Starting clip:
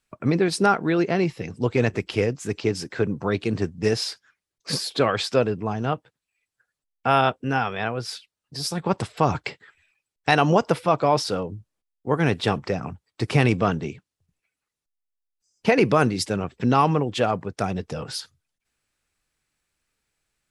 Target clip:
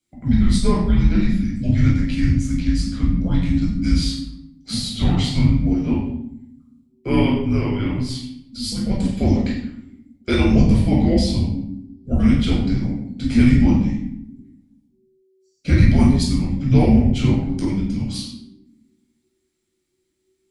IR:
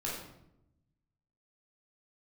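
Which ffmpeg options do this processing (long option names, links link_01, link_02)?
-filter_complex "[1:a]atrim=start_sample=2205[link_01];[0:a][link_01]afir=irnorm=-1:irlink=0,afreqshift=-380,equalizer=frequency=1100:width=0.88:gain=-14.5,volume=1.5dB"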